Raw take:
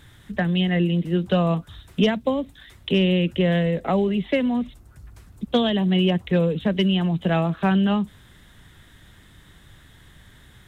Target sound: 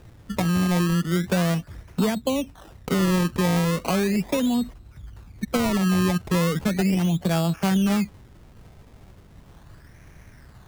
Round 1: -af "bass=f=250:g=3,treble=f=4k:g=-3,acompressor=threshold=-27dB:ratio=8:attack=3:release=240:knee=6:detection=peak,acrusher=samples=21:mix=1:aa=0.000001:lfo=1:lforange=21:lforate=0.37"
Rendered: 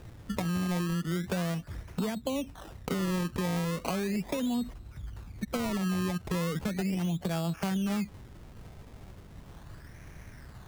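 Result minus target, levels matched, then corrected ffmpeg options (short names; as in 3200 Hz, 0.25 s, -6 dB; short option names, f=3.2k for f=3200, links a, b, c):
compressor: peak gain reduction +10 dB
-af "bass=f=250:g=3,treble=f=4k:g=-3,acompressor=threshold=-15.5dB:ratio=8:attack=3:release=240:knee=6:detection=peak,acrusher=samples=21:mix=1:aa=0.000001:lfo=1:lforange=21:lforate=0.37"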